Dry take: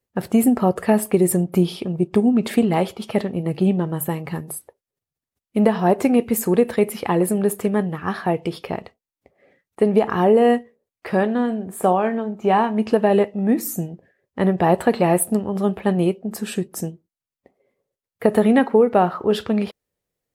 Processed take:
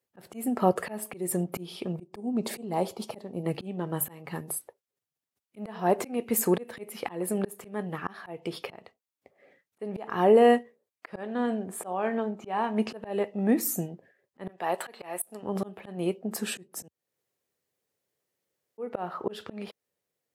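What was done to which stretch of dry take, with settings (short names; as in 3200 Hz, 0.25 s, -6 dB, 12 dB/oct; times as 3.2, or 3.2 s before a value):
2.03–3.44 band shelf 2100 Hz -8.5 dB
11.08–12.47 LPF 11000 Hz
14.49–15.43 HPF 890 Hz 6 dB/oct
16.88–18.78 room tone
whole clip: HPF 79 Hz 24 dB/oct; low shelf 200 Hz -10 dB; auto swell 0.363 s; gain -1.5 dB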